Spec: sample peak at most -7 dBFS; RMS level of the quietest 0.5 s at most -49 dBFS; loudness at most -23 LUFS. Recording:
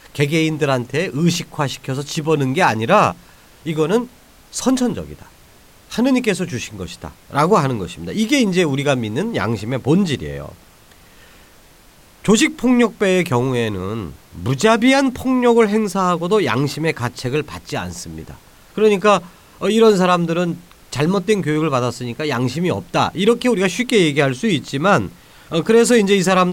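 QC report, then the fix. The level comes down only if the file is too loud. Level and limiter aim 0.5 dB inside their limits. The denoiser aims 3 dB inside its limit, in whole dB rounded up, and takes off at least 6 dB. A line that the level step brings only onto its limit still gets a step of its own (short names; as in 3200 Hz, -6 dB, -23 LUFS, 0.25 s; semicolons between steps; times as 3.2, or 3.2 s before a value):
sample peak -2.5 dBFS: fail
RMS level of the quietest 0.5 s -47 dBFS: fail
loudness -17.5 LUFS: fail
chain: gain -6 dB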